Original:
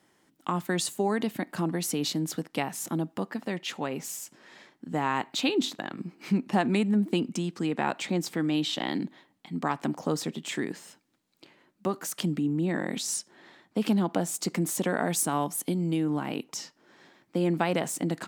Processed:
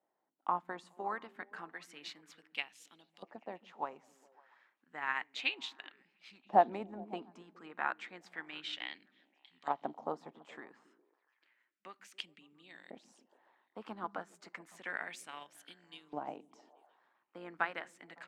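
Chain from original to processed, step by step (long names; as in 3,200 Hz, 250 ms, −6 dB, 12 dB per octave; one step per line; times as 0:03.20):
amplitude modulation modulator 120 Hz, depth 20%
auto-filter band-pass saw up 0.31 Hz 660–3,800 Hz
echo through a band-pass that steps 139 ms, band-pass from 180 Hz, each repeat 0.7 octaves, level −8 dB
expander for the loud parts 1.5 to 1, over −55 dBFS
level +6.5 dB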